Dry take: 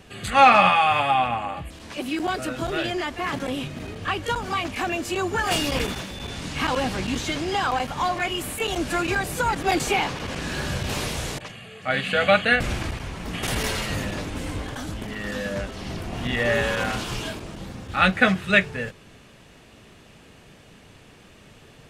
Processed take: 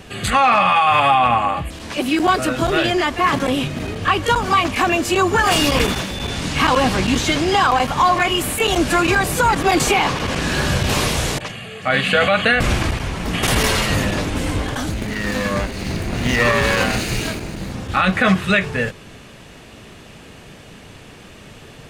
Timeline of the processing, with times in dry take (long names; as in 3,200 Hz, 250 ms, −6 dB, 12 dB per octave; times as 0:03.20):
0:14.89–0:17.72: lower of the sound and its delayed copy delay 0.45 ms
whole clip: dynamic equaliser 1,100 Hz, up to +7 dB, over −44 dBFS, Q 7.8; boost into a limiter +14 dB; level −5 dB